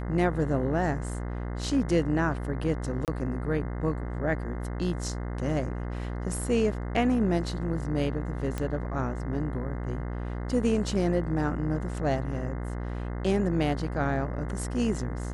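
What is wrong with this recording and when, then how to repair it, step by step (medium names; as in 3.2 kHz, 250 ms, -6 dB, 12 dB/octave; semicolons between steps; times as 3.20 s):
buzz 60 Hz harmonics 35 -33 dBFS
3.05–3.08 s: dropout 28 ms
8.58 s: pop -18 dBFS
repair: de-click; de-hum 60 Hz, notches 35; interpolate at 3.05 s, 28 ms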